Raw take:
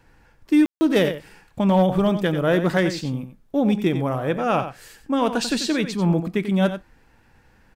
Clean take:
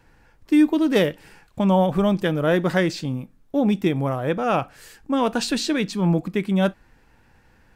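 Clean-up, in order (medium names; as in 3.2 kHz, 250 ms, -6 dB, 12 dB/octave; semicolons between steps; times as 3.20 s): clip repair -10 dBFS; room tone fill 0.66–0.81 s; inverse comb 91 ms -10.5 dB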